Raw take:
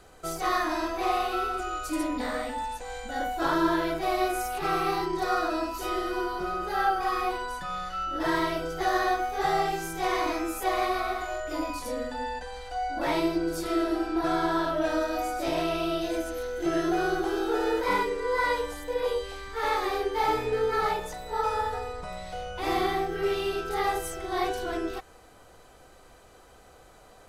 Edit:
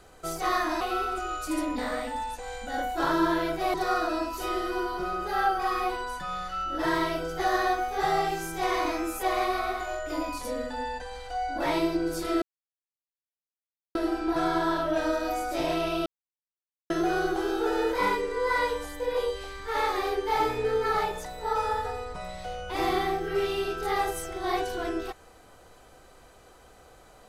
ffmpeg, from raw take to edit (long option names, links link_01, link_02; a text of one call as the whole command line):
ffmpeg -i in.wav -filter_complex "[0:a]asplit=6[link_01][link_02][link_03][link_04][link_05][link_06];[link_01]atrim=end=0.812[link_07];[link_02]atrim=start=1.228:end=4.162[link_08];[link_03]atrim=start=5.148:end=13.83,asetpts=PTS-STARTPTS,afade=type=out:start_time=8.678:duration=0.004:curve=hsin,apad=pad_dur=1.53[link_09];[link_04]atrim=start=13.83:end=15.94,asetpts=PTS-STARTPTS,afade=type=in:duration=0.004:curve=hsin,afade=type=out:start_time=2.106:duration=0.004:curve=hsin[link_10];[link_05]atrim=start=15.94:end=16.78,asetpts=PTS-STARTPTS,volume=0[link_11];[link_06]atrim=start=16.78,asetpts=PTS-STARTPTS,afade=type=in:duration=0.004:curve=hsin[link_12];[link_07][link_08]acrossfade=duration=0.004:curve1=hsin:curve2=hsin[link_13];[link_09][link_10][link_11][link_12]concat=n=4:v=0:a=1[link_14];[link_13][link_14]acrossfade=duration=0.004:curve1=hsin:curve2=hsin" out.wav